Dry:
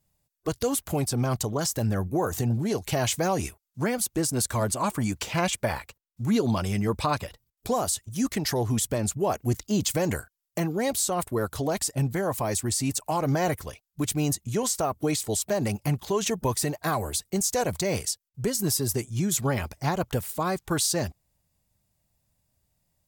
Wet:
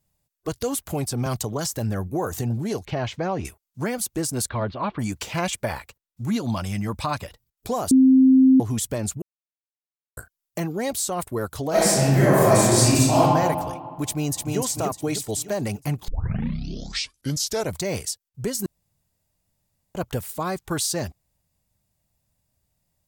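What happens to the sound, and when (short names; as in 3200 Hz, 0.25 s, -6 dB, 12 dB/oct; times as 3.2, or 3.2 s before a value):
1.26–1.75 three-band squash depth 40%
2.85–3.45 air absorption 230 m
4.49–4.99 steep low-pass 4000 Hz 48 dB/oct
6.3–7.19 bell 410 Hz -11.5 dB 0.39 oct
7.91–8.6 bleep 262 Hz -10.5 dBFS
9.22–10.17 mute
11.69–13.19 reverb throw, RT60 1.9 s, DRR -11 dB
14.06–14.58 echo throw 0.3 s, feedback 45%, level -2.5 dB
16.08 tape start 1.67 s
18.66–19.95 room tone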